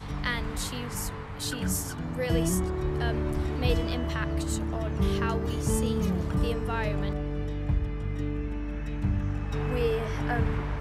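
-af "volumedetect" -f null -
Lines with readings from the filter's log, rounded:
mean_volume: -28.3 dB
max_volume: -11.2 dB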